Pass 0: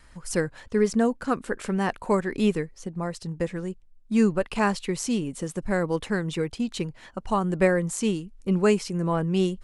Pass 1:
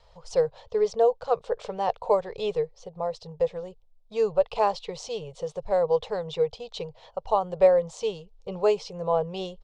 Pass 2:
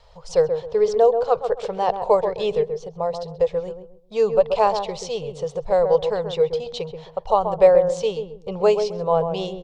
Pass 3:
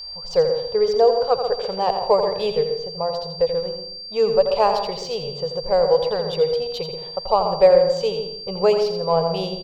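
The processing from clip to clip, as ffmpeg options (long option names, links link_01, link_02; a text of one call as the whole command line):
ffmpeg -i in.wav -af "firequalizer=gain_entry='entry(140,0);entry(270,-29);entry(450,11);entry(800,10);entry(1600,-10);entry(3500,6);entry(5600,0);entry(11000,-27)':delay=0.05:min_phase=1,volume=-5dB" out.wav
ffmpeg -i in.wav -filter_complex "[0:a]asplit=2[link_01][link_02];[link_02]adelay=132,lowpass=frequency=850:poles=1,volume=-5.5dB,asplit=2[link_03][link_04];[link_04]adelay=132,lowpass=frequency=850:poles=1,volume=0.31,asplit=2[link_05][link_06];[link_06]adelay=132,lowpass=frequency=850:poles=1,volume=0.31,asplit=2[link_07][link_08];[link_08]adelay=132,lowpass=frequency=850:poles=1,volume=0.31[link_09];[link_01][link_03][link_05][link_07][link_09]amix=inputs=5:normalize=0,volume=5dB" out.wav
ffmpeg -i in.wav -af "adynamicsmooth=sensitivity=5:basefreq=5300,aeval=exprs='val(0)+0.0251*sin(2*PI*4700*n/s)':channel_layout=same,aecho=1:1:84|168|252|336:0.376|0.139|0.0515|0.019" out.wav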